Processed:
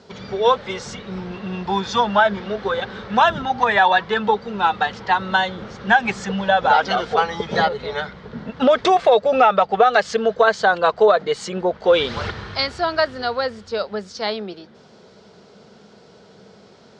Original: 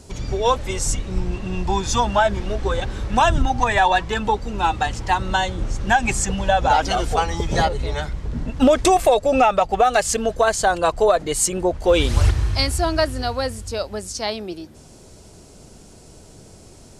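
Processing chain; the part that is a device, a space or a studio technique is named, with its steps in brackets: kitchen radio (cabinet simulation 160–4200 Hz, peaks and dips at 200 Hz +9 dB, 300 Hz -8 dB, 450 Hz +7 dB, 1.4 kHz +4 dB, 2.6 kHz -6 dB); tilt shelf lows -4 dB, about 670 Hz

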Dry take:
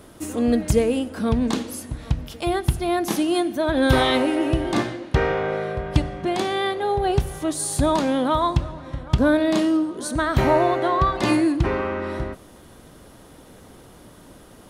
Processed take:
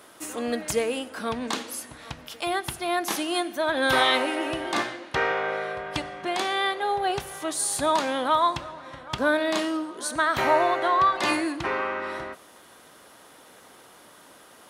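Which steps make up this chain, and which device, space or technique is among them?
filter by subtraction (in parallel: low-pass 1.3 kHz 12 dB/octave + polarity flip)

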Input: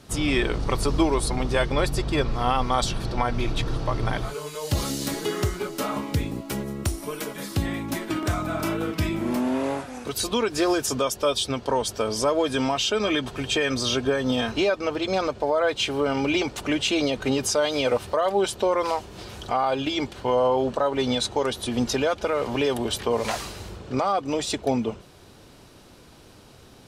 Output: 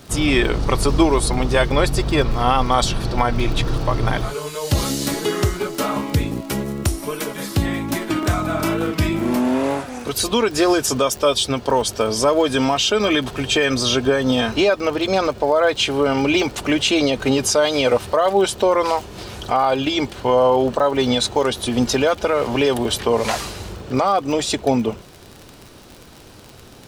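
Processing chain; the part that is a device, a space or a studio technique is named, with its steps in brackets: vinyl LP (wow and flutter 15 cents; crackle 38 per s -33 dBFS; pink noise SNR 37 dB); trim +6 dB

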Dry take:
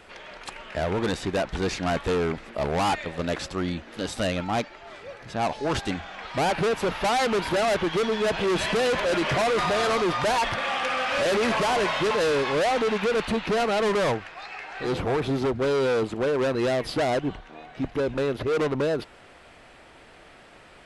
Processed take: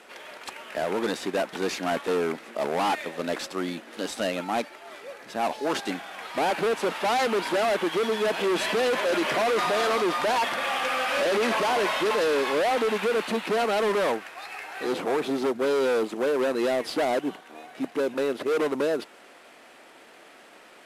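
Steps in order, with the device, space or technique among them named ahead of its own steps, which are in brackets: early wireless headset (high-pass 220 Hz 24 dB/octave; CVSD coder 64 kbps)

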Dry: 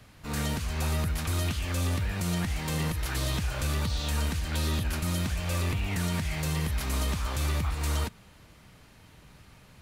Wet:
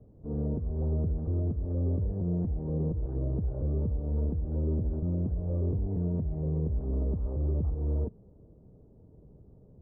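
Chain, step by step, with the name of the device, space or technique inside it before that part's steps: under water (low-pass 550 Hz 24 dB/octave; peaking EQ 420 Hz +6 dB 0.49 oct)

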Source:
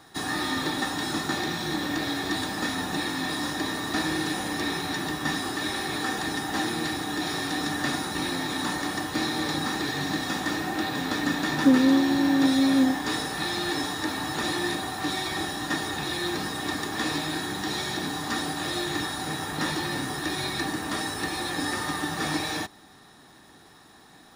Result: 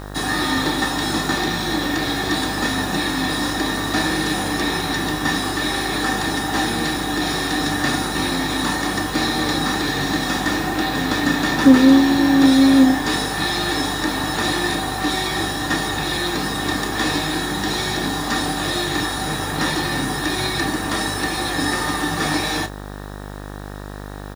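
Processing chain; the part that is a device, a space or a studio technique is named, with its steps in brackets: doubling 30 ms -11 dB; video cassette with head-switching buzz (mains buzz 50 Hz, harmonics 38, -40 dBFS -4 dB/octave; white noise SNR 32 dB); trim +7 dB

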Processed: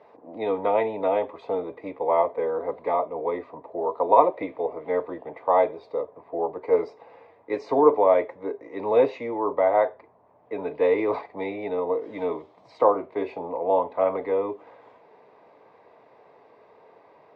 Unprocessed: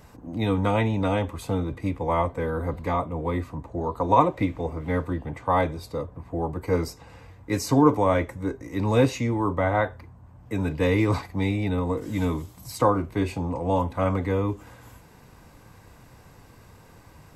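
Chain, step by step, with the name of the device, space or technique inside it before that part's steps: phone earpiece (cabinet simulation 420–3200 Hz, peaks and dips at 430 Hz +10 dB, 640 Hz +9 dB, 910 Hz +3 dB, 1.5 kHz -8 dB, 2.9 kHz -8 dB); trim -1.5 dB

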